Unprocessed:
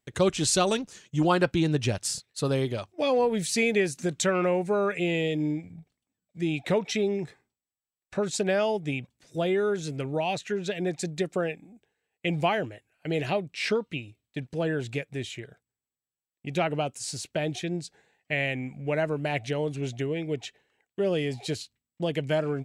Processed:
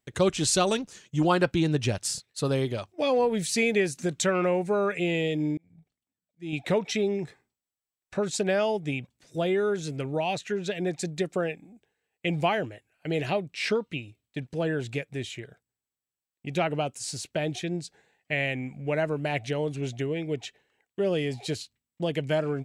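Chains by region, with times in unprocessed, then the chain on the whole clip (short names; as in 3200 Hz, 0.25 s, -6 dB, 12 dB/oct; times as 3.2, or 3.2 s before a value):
5.57–6.53 auto swell 0.286 s + upward expander, over -46 dBFS
whole clip: dry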